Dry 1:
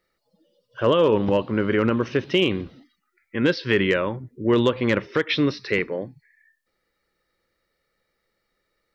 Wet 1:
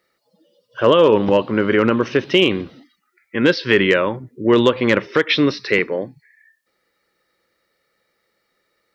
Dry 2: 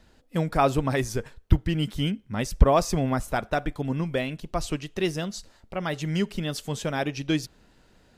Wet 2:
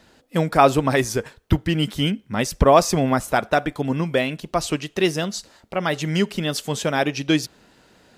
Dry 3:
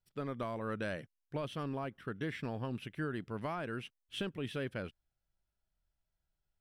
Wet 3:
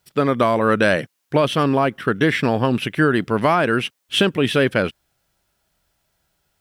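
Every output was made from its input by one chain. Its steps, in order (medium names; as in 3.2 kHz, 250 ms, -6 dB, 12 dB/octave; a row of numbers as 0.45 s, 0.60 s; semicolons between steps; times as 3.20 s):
high-pass 200 Hz 6 dB/octave; peak normalisation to -1.5 dBFS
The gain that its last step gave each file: +6.5 dB, +7.5 dB, +22.5 dB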